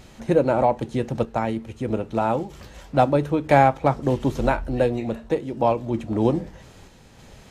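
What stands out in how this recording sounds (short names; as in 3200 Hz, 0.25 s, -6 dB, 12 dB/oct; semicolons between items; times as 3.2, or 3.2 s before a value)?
random-step tremolo 3.2 Hz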